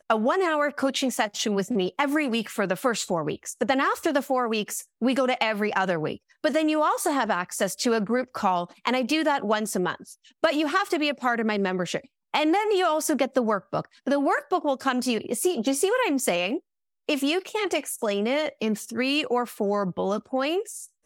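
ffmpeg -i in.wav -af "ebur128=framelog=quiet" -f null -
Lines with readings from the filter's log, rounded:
Integrated loudness:
  I:         -25.3 LUFS
  Threshold: -35.4 LUFS
Loudness range:
  LRA:         1.5 LU
  Threshold: -45.4 LUFS
  LRA low:   -26.3 LUFS
  LRA high:  -24.7 LUFS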